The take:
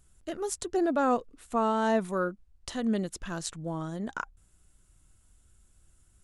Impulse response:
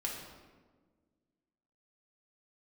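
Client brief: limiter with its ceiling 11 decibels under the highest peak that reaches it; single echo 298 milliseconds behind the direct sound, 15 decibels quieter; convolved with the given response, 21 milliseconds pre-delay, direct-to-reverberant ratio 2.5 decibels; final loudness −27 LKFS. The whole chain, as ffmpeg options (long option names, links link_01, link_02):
-filter_complex "[0:a]alimiter=level_in=1.5dB:limit=-24dB:level=0:latency=1,volume=-1.5dB,aecho=1:1:298:0.178,asplit=2[link_01][link_02];[1:a]atrim=start_sample=2205,adelay=21[link_03];[link_02][link_03]afir=irnorm=-1:irlink=0,volume=-4.5dB[link_04];[link_01][link_04]amix=inputs=2:normalize=0,volume=7dB"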